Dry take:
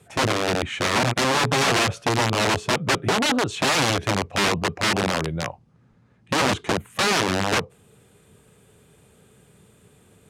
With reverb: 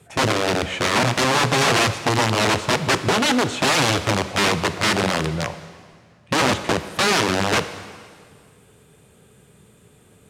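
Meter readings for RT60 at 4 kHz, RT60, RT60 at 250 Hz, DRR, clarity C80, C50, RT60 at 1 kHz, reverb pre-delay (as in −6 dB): 1.8 s, 1.9 s, 1.9 s, 10.5 dB, 13.0 dB, 12.0 dB, 1.9 s, 4 ms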